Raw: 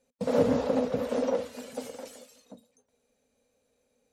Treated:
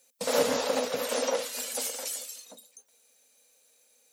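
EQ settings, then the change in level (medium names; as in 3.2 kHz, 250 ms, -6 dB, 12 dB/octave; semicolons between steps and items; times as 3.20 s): tilt EQ +4.5 dB/octave; peaking EQ 91 Hz -7.5 dB 0.31 oct; peaking EQ 190 Hz -4 dB 1.7 oct; +4.0 dB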